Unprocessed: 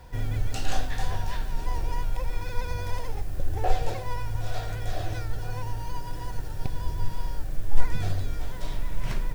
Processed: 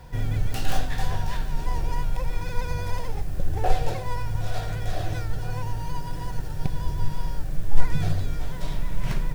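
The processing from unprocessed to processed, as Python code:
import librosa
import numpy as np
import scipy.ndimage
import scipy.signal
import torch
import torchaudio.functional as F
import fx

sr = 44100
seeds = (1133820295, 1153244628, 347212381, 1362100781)

y = fx.tracing_dist(x, sr, depth_ms=0.21)
y = fx.peak_eq(y, sr, hz=160.0, db=9.5, octaves=0.37)
y = F.gain(torch.from_numpy(y), 2.0).numpy()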